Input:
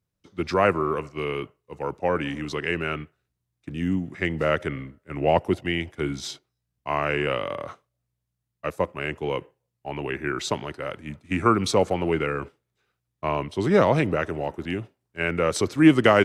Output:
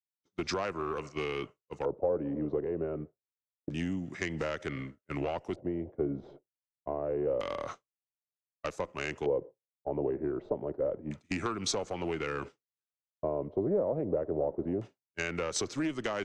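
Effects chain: expander -37 dBFS; bass shelf 80 Hz -10.5 dB; compression 10:1, threshold -28 dBFS, peak gain reduction 18 dB; valve stage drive 23 dB, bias 0.35; LFO low-pass square 0.27 Hz 540–6600 Hz

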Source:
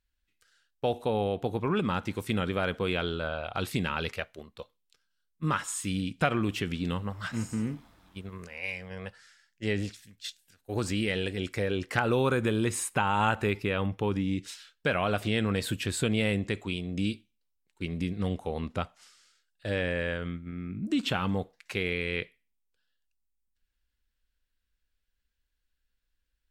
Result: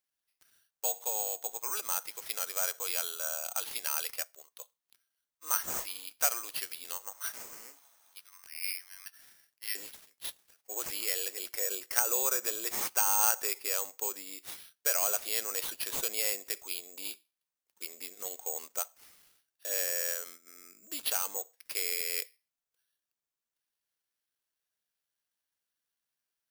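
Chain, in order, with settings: high-pass 580 Hz 24 dB/octave, from 8.18 s 1.2 kHz, from 9.75 s 470 Hz; careless resampling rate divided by 6×, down none, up zero stuff; trim -7.5 dB

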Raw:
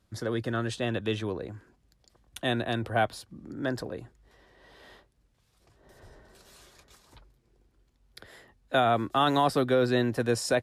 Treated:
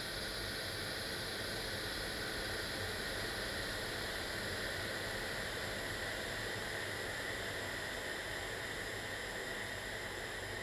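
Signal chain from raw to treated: hum 50 Hz, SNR 35 dB; saturation -29.5 dBFS, distortion -6 dB; Paulstretch 42×, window 0.50 s, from 8.17 s; trim +10.5 dB

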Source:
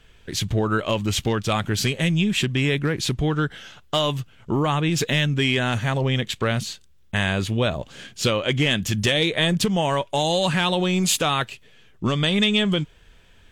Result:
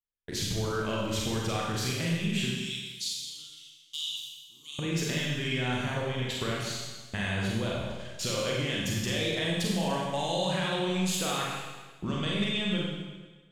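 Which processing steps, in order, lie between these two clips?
gate -38 dBFS, range -46 dB; 2.50–4.79 s: inverse Chebyshev high-pass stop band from 1.7 kHz, stop band 40 dB; compression, threshold -26 dBFS, peak gain reduction 10.5 dB; Schroeder reverb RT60 1.3 s, combs from 32 ms, DRR -4 dB; trim -6 dB

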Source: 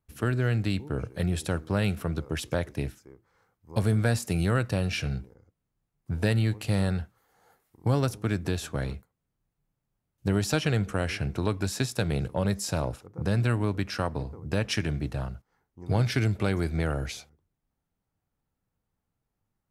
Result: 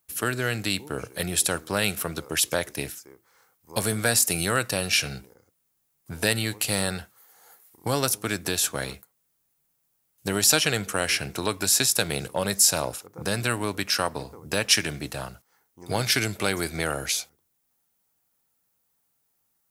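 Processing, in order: RIAA curve recording; trim +5 dB

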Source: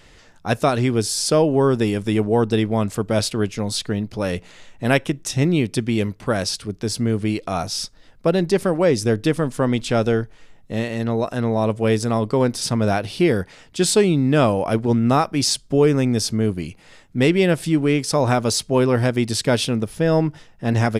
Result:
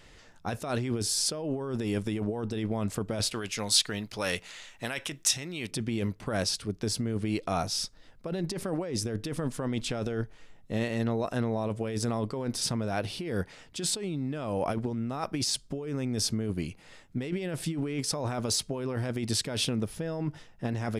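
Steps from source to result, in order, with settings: compressor with a negative ratio -22 dBFS, ratio -1; 3.33–5.71 s: tilt shelf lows -8 dB, about 750 Hz; trim -8.5 dB

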